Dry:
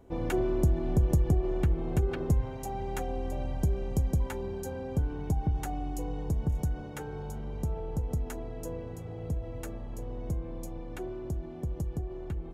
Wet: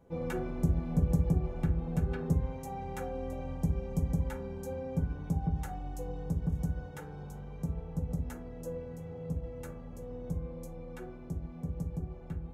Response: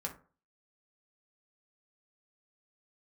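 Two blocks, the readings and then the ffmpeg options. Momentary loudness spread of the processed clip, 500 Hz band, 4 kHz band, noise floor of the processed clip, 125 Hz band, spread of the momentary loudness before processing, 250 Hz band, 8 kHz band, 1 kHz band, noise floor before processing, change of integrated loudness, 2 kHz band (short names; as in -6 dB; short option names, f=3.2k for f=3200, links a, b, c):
13 LU, -5.0 dB, n/a, -46 dBFS, -2.5 dB, 12 LU, -1.0 dB, -7.0 dB, -4.0 dB, -41 dBFS, -3.0 dB, -3.5 dB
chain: -filter_complex "[1:a]atrim=start_sample=2205[a];[0:a][a]afir=irnorm=-1:irlink=0,volume=-4.5dB"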